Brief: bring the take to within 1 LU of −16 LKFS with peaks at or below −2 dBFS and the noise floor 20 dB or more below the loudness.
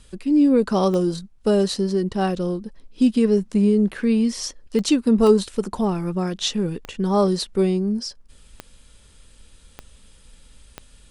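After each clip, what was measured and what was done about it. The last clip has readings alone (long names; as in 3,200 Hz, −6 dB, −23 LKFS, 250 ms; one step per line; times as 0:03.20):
number of clicks 7; integrated loudness −21.0 LKFS; sample peak −4.5 dBFS; target loudness −16.0 LKFS
→ click removal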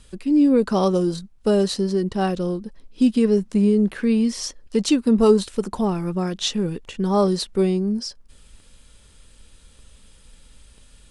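number of clicks 0; integrated loudness −21.0 LKFS; sample peak −4.5 dBFS; target loudness −16.0 LKFS
→ level +5 dB
brickwall limiter −2 dBFS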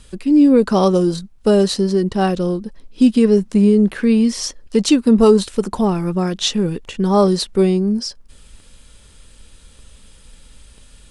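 integrated loudness −16.0 LKFS; sample peak −2.0 dBFS; background noise floor −46 dBFS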